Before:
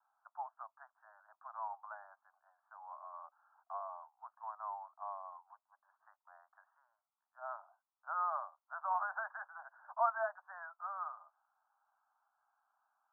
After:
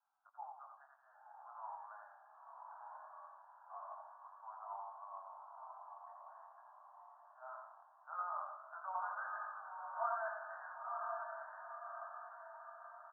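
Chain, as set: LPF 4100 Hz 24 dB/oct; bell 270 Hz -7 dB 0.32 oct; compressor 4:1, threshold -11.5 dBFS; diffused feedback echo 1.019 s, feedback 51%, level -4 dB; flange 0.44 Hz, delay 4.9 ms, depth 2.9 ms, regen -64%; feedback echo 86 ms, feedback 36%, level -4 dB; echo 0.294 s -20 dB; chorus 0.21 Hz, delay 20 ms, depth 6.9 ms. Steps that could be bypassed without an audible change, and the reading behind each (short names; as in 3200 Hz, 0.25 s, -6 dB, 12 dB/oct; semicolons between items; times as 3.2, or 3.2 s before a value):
LPF 4100 Hz: input band ends at 1800 Hz; bell 270 Hz: input band starts at 510 Hz; compressor, threshold -11.5 dBFS: input peak -20.0 dBFS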